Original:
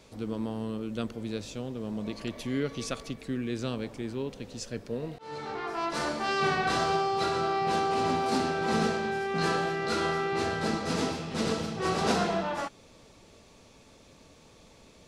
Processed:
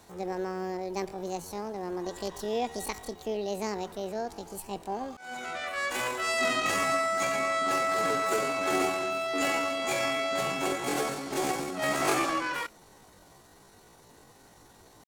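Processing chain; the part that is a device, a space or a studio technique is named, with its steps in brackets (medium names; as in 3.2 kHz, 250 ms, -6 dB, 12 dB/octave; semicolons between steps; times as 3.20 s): chipmunk voice (pitch shift +9 st)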